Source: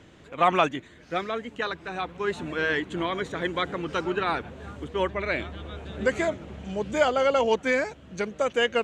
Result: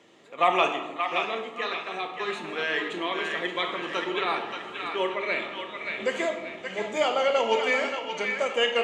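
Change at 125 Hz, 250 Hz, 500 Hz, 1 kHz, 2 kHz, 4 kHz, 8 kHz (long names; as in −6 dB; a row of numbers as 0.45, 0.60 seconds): −12.5, −4.5, −1.5, 0.0, +1.0, +4.0, −0.5 decibels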